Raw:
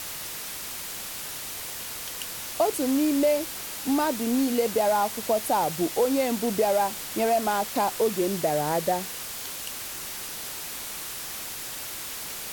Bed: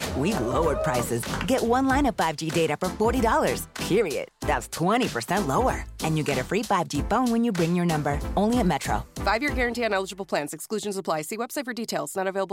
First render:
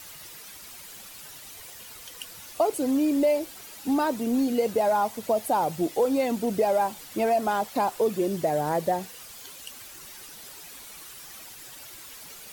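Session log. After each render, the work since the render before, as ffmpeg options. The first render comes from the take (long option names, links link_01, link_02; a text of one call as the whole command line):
ffmpeg -i in.wav -af "afftdn=noise_reduction=11:noise_floor=-36" out.wav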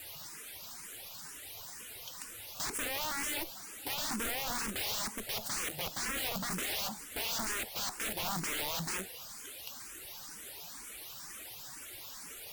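ffmpeg -i in.wav -filter_complex "[0:a]aeval=exprs='(mod(25.1*val(0)+1,2)-1)/25.1':channel_layout=same,asplit=2[link_01][link_02];[link_02]afreqshift=2.1[link_03];[link_01][link_03]amix=inputs=2:normalize=1" out.wav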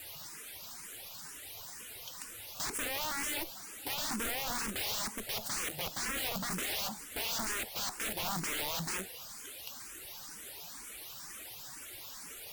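ffmpeg -i in.wav -af anull out.wav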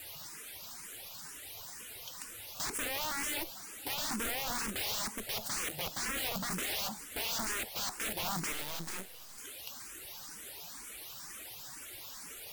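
ffmpeg -i in.wav -filter_complex "[0:a]asettb=1/sr,asplit=3[link_01][link_02][link_03];[link_01]atrim=end=8.524[link_04];[link_02]atrim=start=8.52:end=9.38,asetpts=PTS-STARTPTS,afade=type=in:duration=0.004:curve=qsin,afade=type=out:start_time=0.856:duration=0.004:curve=qsin,aeval=exprs='max(val(0),0)':channel_layout=same[link_05];[link_03]atrim=start=9.376[link_06];[link_04][link_05]acrossfade=duration=0.004:curve1=hsin:curve2=qsin[link_07];[link_07][link_06]acrossfade=duration=0.004:curve1=qsin:curve2=hsin" out.wav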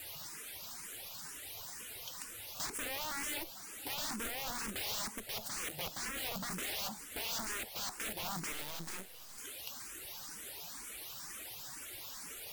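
ffmpeg -i in.wav -af "alimiter=level_in=4.5dB:limit=-24dB:level=0:latency=1:release=453,volume=-4.5dB" out.wav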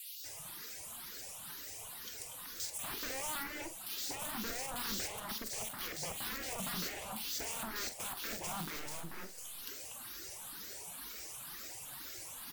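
ffmpeg -i in.wav -filter_complex "[0:a]asplit=2[link_01][link_02];[link_02]adelay=45,volume=-11dB[link_03];[link_01][link_03]amix=inputs=2:normalize=0,acrossover=split=2700[link_04][link_05];[link_04]adelay=240[link_06];[link_06][link_05]amix=inputs=2:normalize=0" out.wav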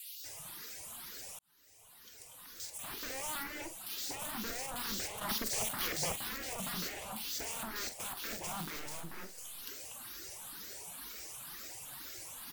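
ffmpeg -i in.wav -filter_complex "[0:a]asettb=1/sr,asplit=3[link_01][link_02][link_03];[link_01]atrim=end=5.214[link_04];[link_02]atrim=start=5.21:end=6.16,asetpts=PTS-STARTPTS,afade=type=in:duration=0.004:curve=qsin,afade=type=out:start_time=0.946:duration=0.004:curve=qsin,acontrast=46[link_05];[link_03]atrim=start=6.156[link_06];[link_04][link_05]acrossfade=duration=0.004:curve1=hsin:curve2=qsin[link_07];[link_07][link_06]acrossfade=duration=0.004:curve1=qsin:curve2=hsin,asplit=2[link_08][link_09];[link_08]atrim=end=1.39,asetpts=PTS-STARTPTS,afade=type=out:start_time=1.386:duration=0.004:curve=hsin[link_10];[link_09]atrim=start=1.39,asetpts=PTS-STARTPTS,afade=type=in:duration=1.94[link_11];[link_10][link_11]concat=n=2:v=0:a=1" out.wav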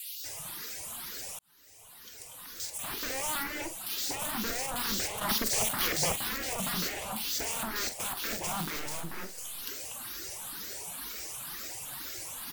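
ffmpeg -i in.wav -af "volume=6.5dB" out.wav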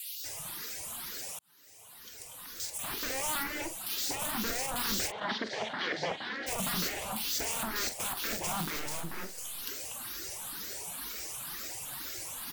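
ffmpeg -i in.wav -filter_complex "[0:a]asettb=1/sr,asplit=3[link_01][link_02][link_03];[link_01]atrim=end=1.184[link_04];[link_02]atrim=start=1.18:end=1.93,asetpts=PTS-STARTPTS,afade=type=in:duration=0.004:curve=qsin,afade=type=out:start_time=0.746:duration=0.004:curve=qsin,highpass=100[link_05];[link_03]atrim=start=1.926[link_06];[link_04][link_05]acrossfade=duration=0.004:curve1=hsin:curve2=qsin[link_07];[link_07][link_06]acrossfade=duration=0.004:curve1=qsin:curve2=hsin,asplit=3[link_08][link_09][link_10];[link_08]afade=type=out:start_time=5.1:duration=0.02[link_11];[link_09]highpass=230,equalizer=frequency=1200:width_type=q:width=4:gain=-6,equalizer=frequency=1700:width_type=q:width=4:gain=4,equalizer=frequency=2600:width_type=q:width=4:gain=-7,lowpass=frequency=3800:width=0.5412,lowpass=frequency=3800:width=1.3066,afade=type=in:start_time=5.1:duration=0.02,afade=type=out:start_time=6.46:duration=0.02[link_12];[link_10]afade=type=in:start_time=6.46:duration=0.02[link_13];[link_11][link_12][link_13]amix=inputs=3:normalize=0" out.wav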